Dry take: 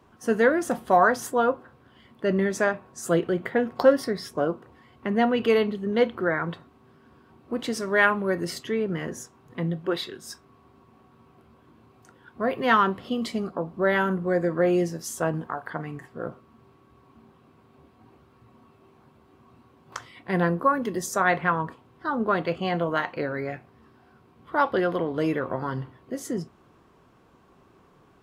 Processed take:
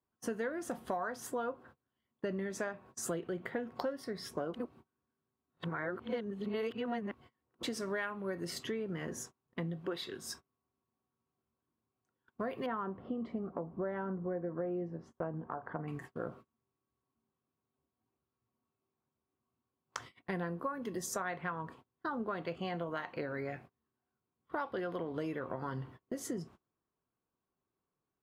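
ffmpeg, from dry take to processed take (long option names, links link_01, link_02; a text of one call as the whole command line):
ffmpeg -i in.wav -filter_complex "[0:a]asettb=1/sr,asplit=3[link_01][link_02][link_03];[link_01]atrim=end=12.664[link_04];[link_02]atrim=start=12.66:end=15.88,asetpts=PTS-STARTPTS,afade=type=in:duration=0.004:curve=qsin,afade=type=out:start_time=3.216:duration=0.004:curve=qsin,lowpass=1100[link_05];[link_03]atrim=start=15.876[link_06];[link_04][link_05]acrossfade=duration=0.004:curve1=hsin:curve2=qsin[link_07];[link_07][link_06]acrossfade=duration=0.004:curve1=qsin:curve2=hsin,asplit=3[link_08][link_09][link_10];[link_08]atrim=end=4.542[link_11];[link_09]atrim=start=4.538:end=7.632,asetpts=PTS-STARTPTS,areverse[link_12];[link_10]atrim=start=7.628[link_13];[link_11][link_12]acrossfade=duration=0.004:curve1=hsin:curve2=hsin[link_14];[link_14][link_13]acrossfade=duration=0.004:curve1=hsin:curve2=hsin,agate=range=-29dB:threshold=-45dB:ratio=16:detection=peak,acompressor=threshold=-32dB:ratio=6,volume=-3dB" out.wav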